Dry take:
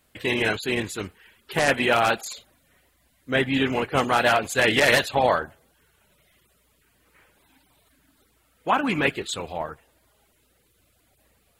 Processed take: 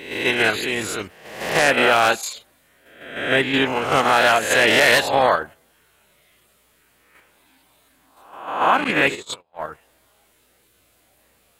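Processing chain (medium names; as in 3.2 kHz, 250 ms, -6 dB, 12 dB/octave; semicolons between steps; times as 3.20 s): reverse spectral sustain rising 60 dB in 0.79 s; bass shelf 220 Hz -7.5 dB; 8.84–9.62 s: gate -25 dBFS, range -40 dB; in parallel at +3 dB: level held to a coarse grid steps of 11 dB; on the sum: trim -3 dB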